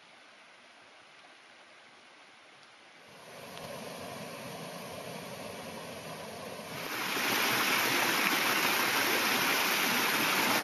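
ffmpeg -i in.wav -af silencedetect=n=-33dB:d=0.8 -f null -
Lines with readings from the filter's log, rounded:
silence_start: 0.00
silence_end: 3.58 | silence_duration: 3.58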